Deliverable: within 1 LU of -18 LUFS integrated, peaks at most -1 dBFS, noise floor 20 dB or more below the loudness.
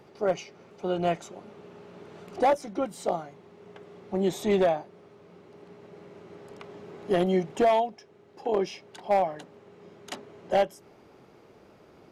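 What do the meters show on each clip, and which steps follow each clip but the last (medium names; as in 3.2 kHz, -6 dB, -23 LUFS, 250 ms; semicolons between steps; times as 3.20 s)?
clipped samples 0.6%; clipping level -16.5 dBFS; loudness -27.5 LUFS; peak level -16.5 dBFS; loudness target -18.0 LUFS
-> clip repair -16.5 dBFS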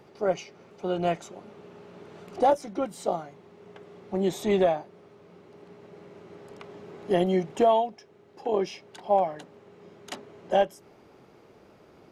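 clipped samples 0.0%; loudness -27.0 LUFS; peak level -10.5 dBFS; loudness target -18.0 LUFS
-> trim +9 dB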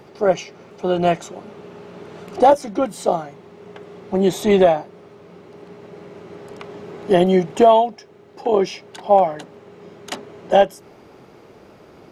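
loudness -18.0 LUFS; peak level -1.5 dBFS; noise floor -47 dBFS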